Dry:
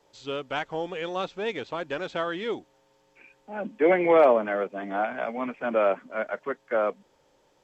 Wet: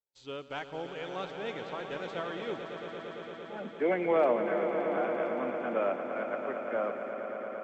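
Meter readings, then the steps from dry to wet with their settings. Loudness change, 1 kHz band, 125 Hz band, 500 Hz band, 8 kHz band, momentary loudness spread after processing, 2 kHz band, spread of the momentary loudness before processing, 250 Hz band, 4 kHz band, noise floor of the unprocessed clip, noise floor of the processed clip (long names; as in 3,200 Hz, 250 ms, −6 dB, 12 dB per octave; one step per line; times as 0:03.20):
−6.5 dB, −6.0 dB, −4.0 dB, −5.5 dB, can't be measured, 14 LU, −6.5 dB, 14 LU, −5.0 dB, −6.0 dB, −65 dBFS, −48 dBFS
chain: dynamic equaliser 120 Hz, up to +4 dB, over −38 dBFS, Q 0.71
noise gate −51 dBFS, range −31 dB
echo that builds up and dies away 114 ms, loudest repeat 5, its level −11 dB
level −8.5 dB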